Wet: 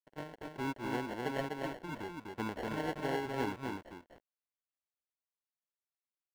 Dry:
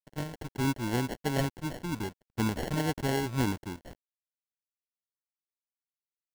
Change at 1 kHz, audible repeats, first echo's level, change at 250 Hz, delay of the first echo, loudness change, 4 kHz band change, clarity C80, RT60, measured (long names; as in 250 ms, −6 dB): −2.5 dB, 1, −3.5 dB, −7.5 dB, 250 ms, −6.5 dB, −8.0 dB, no reverb audible, no reverb audible